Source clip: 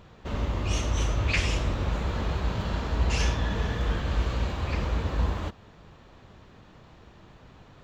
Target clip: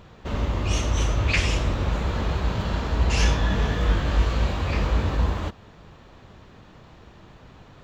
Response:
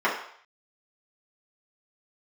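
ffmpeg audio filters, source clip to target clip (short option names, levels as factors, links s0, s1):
-filter_complex "[0:a]asettb=1/sr,asplit=3[s0][s1][s2];[s0]atrim=end=3.154[s3];[s1]atrim=start=3.15:end=5.16,asetpts=PTS-STARTPTS,afade=t=in:d=0.004:c=qsin,afade=t=out:st=2.006:d=0.004:c=qsin,asplit=2[s4][s5];[s5]adelay=21,volume=0.596[s6];[s4][s6]amix=inputs=2:normalize=0,atrim=end_sample=88641[s7];[s2]atrim=start=5.156[s8];[s3][s7]acrossfade=d=0.004:c1=hsin:c2=qsin[s9];[s9][s8]acrossfade=d=0.004:c1=qsin:c2=hsin,volume=1.5"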